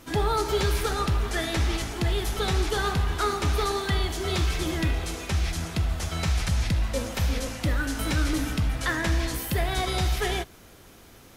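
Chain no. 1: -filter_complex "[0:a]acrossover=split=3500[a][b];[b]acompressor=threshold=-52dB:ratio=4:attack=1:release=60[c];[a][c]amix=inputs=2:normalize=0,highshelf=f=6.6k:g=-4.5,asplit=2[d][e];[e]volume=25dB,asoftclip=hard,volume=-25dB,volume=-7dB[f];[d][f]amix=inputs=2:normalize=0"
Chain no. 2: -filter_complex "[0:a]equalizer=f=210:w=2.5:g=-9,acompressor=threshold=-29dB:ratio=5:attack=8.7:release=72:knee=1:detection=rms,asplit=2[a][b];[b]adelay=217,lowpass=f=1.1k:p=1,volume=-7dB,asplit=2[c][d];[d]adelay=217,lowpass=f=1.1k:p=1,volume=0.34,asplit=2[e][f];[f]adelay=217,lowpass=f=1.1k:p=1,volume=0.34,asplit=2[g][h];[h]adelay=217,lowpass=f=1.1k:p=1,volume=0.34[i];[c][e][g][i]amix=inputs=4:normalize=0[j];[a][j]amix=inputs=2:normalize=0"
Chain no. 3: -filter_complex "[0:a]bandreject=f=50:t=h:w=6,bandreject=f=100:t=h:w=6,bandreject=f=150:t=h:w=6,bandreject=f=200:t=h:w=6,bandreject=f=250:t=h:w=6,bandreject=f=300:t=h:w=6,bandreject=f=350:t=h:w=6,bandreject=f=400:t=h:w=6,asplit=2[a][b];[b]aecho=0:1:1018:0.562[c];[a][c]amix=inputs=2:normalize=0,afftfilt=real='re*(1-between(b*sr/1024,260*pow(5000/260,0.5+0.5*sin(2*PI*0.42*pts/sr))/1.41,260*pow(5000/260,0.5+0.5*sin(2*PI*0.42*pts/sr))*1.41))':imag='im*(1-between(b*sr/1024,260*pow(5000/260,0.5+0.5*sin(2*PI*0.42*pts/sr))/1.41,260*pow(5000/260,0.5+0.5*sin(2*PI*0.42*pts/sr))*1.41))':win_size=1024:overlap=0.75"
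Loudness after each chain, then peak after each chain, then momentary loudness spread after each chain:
-25.5, -32.0, -27.0 LUFS; -14.0, -18.0, -12.0 dBFS; 3, 2, 3 LU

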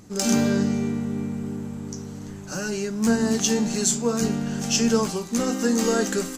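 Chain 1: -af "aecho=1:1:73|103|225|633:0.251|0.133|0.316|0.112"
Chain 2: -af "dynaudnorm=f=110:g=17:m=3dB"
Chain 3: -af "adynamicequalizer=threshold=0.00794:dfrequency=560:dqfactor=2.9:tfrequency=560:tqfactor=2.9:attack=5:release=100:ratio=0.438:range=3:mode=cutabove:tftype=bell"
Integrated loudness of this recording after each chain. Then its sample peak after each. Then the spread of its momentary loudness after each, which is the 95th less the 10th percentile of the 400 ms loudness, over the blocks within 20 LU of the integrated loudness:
-22.5, -22.0, -24.0 LUFS; -7.0, -5.0, -7.5 dBFS; 12, 12, 12 LU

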